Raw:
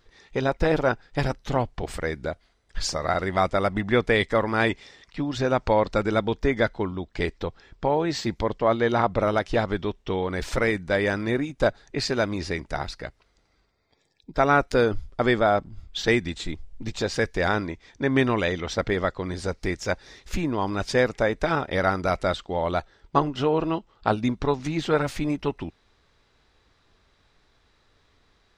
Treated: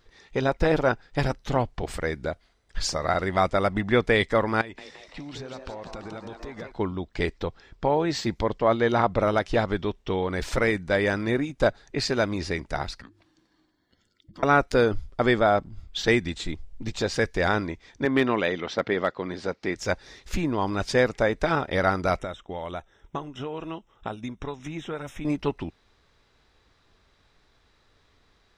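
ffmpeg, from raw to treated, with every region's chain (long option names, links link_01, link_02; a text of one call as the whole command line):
ffmpeg -i in.wav -filter_complex "[0:a]asettb=1/sr,asplit=3[link_01][link_02][link_03];[link_01]atrim=end=4.614[link_04];[link_02]atrim=start=4.61:end=6.72,asetpts=PTS-STARTPTS,afade=type=in:duration=0.004:curve=qsin,afade=type=out:start_time=2.106:duration=0.004:curve=qsin,acompressor=threshold=-34dB:ratio=16:attack=3.2:release=140:knee=1:detection=peak,asplit=9[link_05][link_06][link_07][link_08][link_09][link_10][link_11][link_12][link_13];[link_06]adelay=169,afreqshift=130,volume=-6.5dB[link_14];[link_07]adelay=338,afreqshift=260,volume=-10.9dB[link_15];[link_08]adelay=507,afreqshift=390,volume=-15.4dB[link_16];[link_09]adelay=676,afreqshift=520,volume=-19.8dB[link_17];[link_10]adelay=845,afreqshift=650,volume=-24.2dB[link_18];[link_11]adelay=1014,afreqshift=780,volume=-28.7dB[link_19];[link_12]adelay=1183,afreqshift=910,volume=-33.1dB[link_20];[link_13]adelay=1352,afreqshift=1040,volume=-37.6dB[link_21];[link_05][link_14][link_15][link_16][link_17][link_18][link_19][link_20][link_21]amix=inputs=9:normalize=0,atrim=end_sample=93051[link_22];[link_03]atrim=start=6.716[link_23];[link_04][link_22]acrossfade=duration=0.004:curve1=hsin:curve2=qsin[link_24];[link_24][link_23]acrossfade=duration=0.004:curve1=qsin:curve2=hsin,asettb=1/sr,asplit=3[link_25][link_26][link_27];[link_25]atrim=end=13.014[link_28];[link_26]atrim=start=13.01:end=14.43,asetpts=PTS-STARTPTS,afade=type=in:duration=0.004:curve=qsin,afade=type=out:start_time=1.416:duration=0.004:curve=qsin,afreqshift=-360,bandreject=frequency=50:width_type=h:width=6,bandreject=frequency=100:width_type=h:width=6,acompressor=threshold=-49dB:ratio=2.5:attack=3.2:release=140:knee=1:detection=peak[link_29];[link_27]atrim=start=14.426[link_30];[link_28][link_29]acrossfade=duration=0.004:curve1=hsin:curve2=qsin[link_31];[link_31][link_30]acrossfade=duration=0.004:curve1=qsin:curve2=hsin,asettb=1/sr,asplit=3[link_32][link_33][link_34];[link_32]atrim=end=18.054[link_35];[link_33]atrim=start=18.05:end=19.76,asetpts=PTS-STARTPTS,afade=type=in:duration=0.004:curve=qsin,afade=type=out:start_time=1.706:duration=0.004:curve=qsin,highpass=180,lowpass=4300,asoftclip=type=hard:threshold=-11dB[link_36];[link_34]atrim=start=19.756[link_37];[link_35][link_36]acrossfade=duration=0.004:curve1=hsin:curve2=qsin[link_38];[link_38][link_37]acrossfade=duration=0.004:curve1=qsin:curve2=hsin,asettb=1/sr,asplit=3[link_39][link_40][link_41];[link_39]atrim=end=22.194[link_42];[link_40]atrim=start=22.19:end=25.25,asetpts=PTS-STARTPTS,afade=type=in:duration=0.004:curve=qsin,afade=type=out:start_time=3.056:duration=0.004:curve=qsin,acrossover=split=1400|3300[link_43][link_44][link_45];[link_43]acompressor=threshold=-33dB:ratio=4[link_46];[link_44]acompressor=threshold=-46dB:ratio=4[link_47];[link_45]acompressor=threshold=-51dB:ratio=4[link_48];[link_46][link_47][link_48]amix=inputs=3:normalize=0,asuperstop=centerf=4500:order=20:qfactor=3.4[link_49];[link_41]atrim=start=25.246[link_50];[link_42][link_49]acrossfade=duration=0.004:curve1=hsin:curve2=qsin[link_51];[link_51][link_50]acrossfade=duration=0.004:curve1=qsin:curve2=hsin" out.wav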